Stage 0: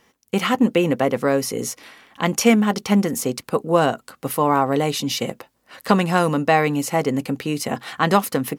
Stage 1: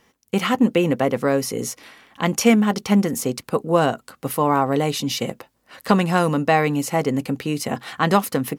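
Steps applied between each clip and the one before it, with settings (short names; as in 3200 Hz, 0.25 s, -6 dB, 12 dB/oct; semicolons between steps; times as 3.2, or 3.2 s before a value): low shelf 170 Hz +3.5 dB; gain -1 dB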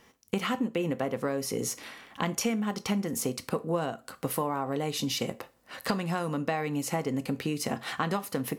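compressor 6:1, threshold -27 dBFS, peak gain reduction 16.5 dB; on a send at -14 dB: reverb RT60 0.30 s, pre-delay 12 ms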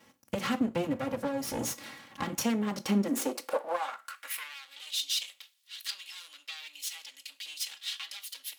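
minimum comb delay 3.6 ms; high-pass sweep 120 Hz -> 3400 Hz, 2.68–4.6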